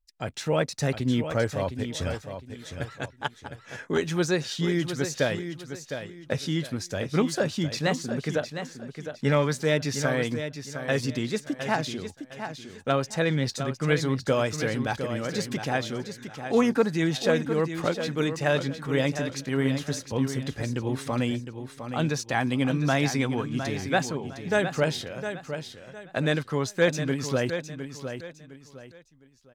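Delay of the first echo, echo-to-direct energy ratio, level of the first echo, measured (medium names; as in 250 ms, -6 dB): 709 ms, -8.5 dB, -9.0 dB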